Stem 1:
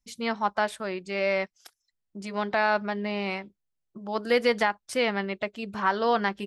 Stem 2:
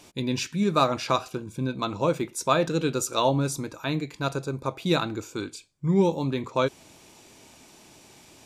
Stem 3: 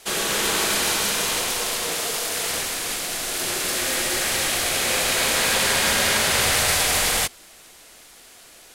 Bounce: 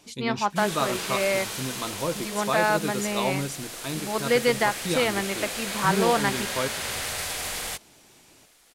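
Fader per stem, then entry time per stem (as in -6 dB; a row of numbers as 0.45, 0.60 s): +1.0, -5.0, -11.0 dB; 0.00, 0.00, 0.50 s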